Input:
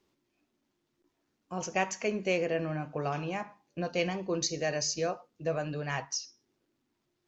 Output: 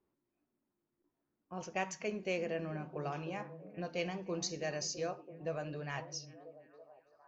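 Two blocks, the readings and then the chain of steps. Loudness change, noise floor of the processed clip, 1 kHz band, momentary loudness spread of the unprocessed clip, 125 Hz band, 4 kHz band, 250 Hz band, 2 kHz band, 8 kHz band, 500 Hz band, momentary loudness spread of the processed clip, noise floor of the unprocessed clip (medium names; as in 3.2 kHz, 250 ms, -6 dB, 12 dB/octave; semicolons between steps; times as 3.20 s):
-7.0 dB, under -85 dBFS, -7.0 dB, 8 LU, -6.5 dB, -7.5 dB, -6.5 dB, -7.0 dB, no reading, -6.5 dB, 13 LU, -80 dBFS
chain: repeats whose band climbs or falls 330 ms, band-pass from 180 Hz, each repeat 0.7 oct, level -8 dB; level-controlled noise filter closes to 1.5 kHz, open at -26 dBFS; trim -7 dB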